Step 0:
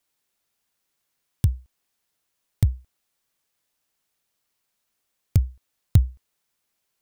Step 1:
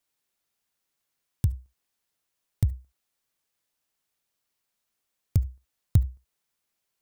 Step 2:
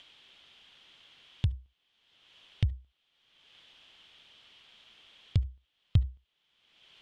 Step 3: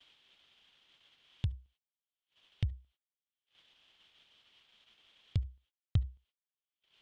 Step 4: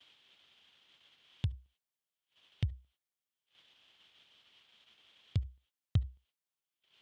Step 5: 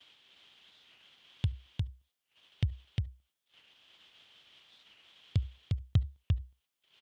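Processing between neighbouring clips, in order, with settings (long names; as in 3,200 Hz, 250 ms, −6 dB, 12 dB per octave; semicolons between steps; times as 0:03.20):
on a send at −21 dB: convolution reverb, pre-delay 55 ms; on the sum: dynamic equaliser 2,800 Hz, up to −5 dB, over −58 dBFS, Q 0.71; level −4 dB
in parallel at −3 dB: upward compression, threshold −23 dBFS; on the sum: low-pass with resonance 3,200 Hz, resonance Q 6.1; level −8.5 dB
noise gate −58 dBFS, range −29 dB; level −5.5 dB
high-pass filter 68 Hz; level +1 dB
on a send: single-tap delay 354 ms −3 dB; on the sum: wow of a warped record 45 rpm, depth 160 cents; level +3 dB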